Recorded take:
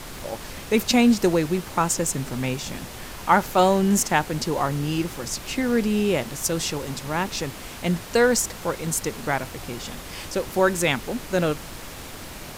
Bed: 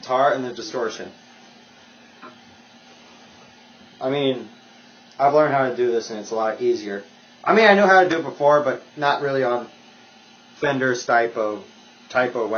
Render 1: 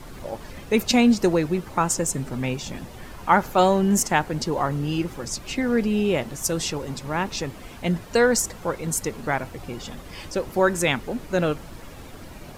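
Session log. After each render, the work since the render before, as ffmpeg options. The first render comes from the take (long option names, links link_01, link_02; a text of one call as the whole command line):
ffmpeg -i in.wav -af "afftdn=noise_reduction=10:noise_floor=-38" out.wav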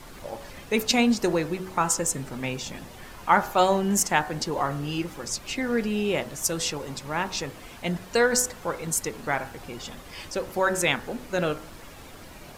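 ffmpeg -i in.wav -af "lowshelf=frequency=450:gain=-6,bandreject=frequency=62.26:width_type=h:width=4,bandreject=frequency=124.52:width_type=h:width=4,bandreject=frequency=186.78:width_type=h:width=4,bandreject=frequency=249.04:width_type=h:width=4,bandreject=frequency=311.3:width_type=h:width=4,bandreject=frequency=373.56:width_type=h:width=4,bandreject=frequency=435.82:width_type=h:width=4,bandreject=frequency=498.08:width_type=h:width=4,bandreject=frequency=560.34:width_type=h:width=4,bandreject=frequency=622.6:width_type=h:width=4,bandreject=frequency=684.86:width_type=h:width=4,bandreject=frequency=747.12:width_type=h:width=4,bandreject=frequency=809.38:width_type=h:width=4,bandreject=frequency=871.64:width_type=h:width=4,bandreject=frequency=933.9:width_type=h:width=4,bandreject=frequency=996.16:width_type=h:width=4,bandreject=frequency=1058.42:width_type=h:width=4,bandreject=frequency=1120.68:width_type=h:width=4,bandreject=frequency=1182.94:width_type=h:width=4,bandreject=frequency=1245.2:width_type=h:width=4,bandreject=frequency=1307.46:width_type=h:width=4,bandreject=frequency=1369.72:width_type=h:width=4,bandreject=frequency=1431.98:width_type=h:width=4,bandreject=frequency=1494.24:width_type=h:width=4,bandreject=frequency=1556.5:width_type=h:width=4,bandreject=frequency=1618.76:width_type=h:width=4,bandreject=frequency=1681.02:width_type=h:width=4,bandreject=frequency=1743.28:width_type=h:width=4,bandreject=frequency=1805.54:width_type=h:width=4,bandreject=frequency=1867.8:width_type=h:width=4" out.wav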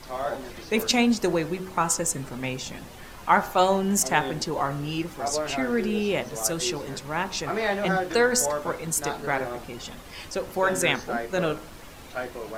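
ffmpeg -i in.wav -i bed.wav -filter_complex "[1:a]volume=-13dB[link_01];[0:a][link_01]amix=inputs=2:normalize=0" out.wav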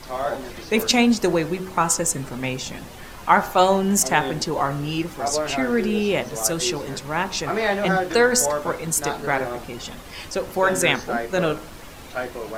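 ffmpeg -i in.wav -af "volume=4dB,alimiter=limit=-3dB:level=0:latency=1" out.wav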